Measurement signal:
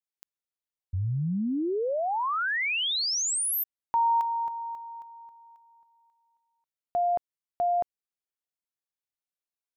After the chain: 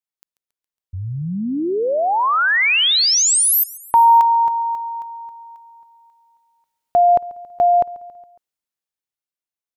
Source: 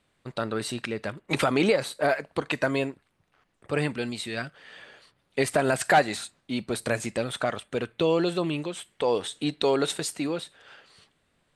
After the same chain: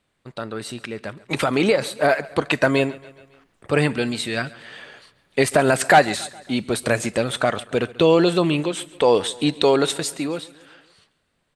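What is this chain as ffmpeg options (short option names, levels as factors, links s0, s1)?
-filter_complex "[0:a]dynaudnorm=f=170:g=21:m=5.01,asplit=2[s0][s1];[s1]aecho=0:1:138|276|414|552:0.0891|0.0508|0.029|0.0165[s2];[s0][s2]amix=inputs=2:normalize=0,volume=0.891"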